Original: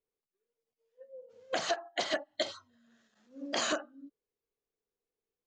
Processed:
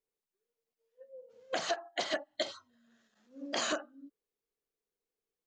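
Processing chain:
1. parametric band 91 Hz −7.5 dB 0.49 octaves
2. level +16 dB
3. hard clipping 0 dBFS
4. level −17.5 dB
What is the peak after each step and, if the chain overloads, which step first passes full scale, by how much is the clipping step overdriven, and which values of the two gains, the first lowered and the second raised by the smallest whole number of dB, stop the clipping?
−19.0, −3.0, −3.0, −20.5 dBFS
no step passes full scale

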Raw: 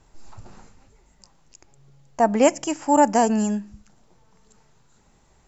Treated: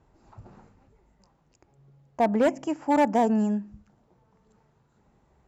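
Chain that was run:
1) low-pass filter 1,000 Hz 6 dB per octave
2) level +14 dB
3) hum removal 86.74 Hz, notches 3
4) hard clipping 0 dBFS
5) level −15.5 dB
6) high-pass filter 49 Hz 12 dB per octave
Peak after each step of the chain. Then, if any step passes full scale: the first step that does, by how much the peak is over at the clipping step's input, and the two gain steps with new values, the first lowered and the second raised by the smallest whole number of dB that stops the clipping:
−6.0, +8.0, +8.5, 0.0, −15.5, −13.5 dBFS
step 2, 8.5 dB
step 2 +5 dB, step 5 −6.5 dB

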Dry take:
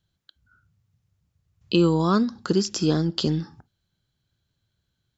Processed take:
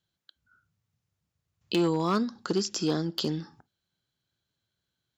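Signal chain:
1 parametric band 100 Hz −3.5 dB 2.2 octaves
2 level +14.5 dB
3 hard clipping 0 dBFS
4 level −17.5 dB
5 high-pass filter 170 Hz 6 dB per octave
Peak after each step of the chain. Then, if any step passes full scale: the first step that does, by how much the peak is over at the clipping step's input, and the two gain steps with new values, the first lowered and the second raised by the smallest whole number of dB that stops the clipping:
−6.0, +8.5, 0.0, −17.5, −15.0 dBFS
step 2, 8.5 dB
step 2 +5.5 dB, step 4 −8.5 dB

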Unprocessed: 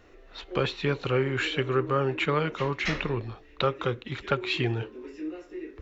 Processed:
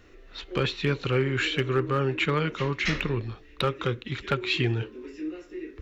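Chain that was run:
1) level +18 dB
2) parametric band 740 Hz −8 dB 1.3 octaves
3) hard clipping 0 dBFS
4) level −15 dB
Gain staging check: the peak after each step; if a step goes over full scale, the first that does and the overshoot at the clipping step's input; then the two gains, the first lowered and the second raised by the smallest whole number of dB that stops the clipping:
+8.5, +7.5, 0.0, −15.0 dBFS
step 1, 7.5 dB
step 1 +10 dB, step 4 −7 dB

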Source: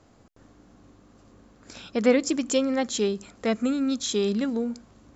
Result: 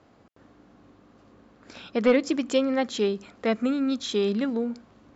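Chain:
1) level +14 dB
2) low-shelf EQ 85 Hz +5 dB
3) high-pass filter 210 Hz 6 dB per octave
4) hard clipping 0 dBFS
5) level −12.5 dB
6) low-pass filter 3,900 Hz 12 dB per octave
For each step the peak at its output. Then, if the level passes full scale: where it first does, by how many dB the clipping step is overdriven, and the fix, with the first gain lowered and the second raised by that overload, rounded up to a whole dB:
+5.5, +6.5, +5.0, 0.0, −12.5, −12.5 dBFS
step 1, 5.0 dB
step 1 +9 dB, step 5 −7.5 dB

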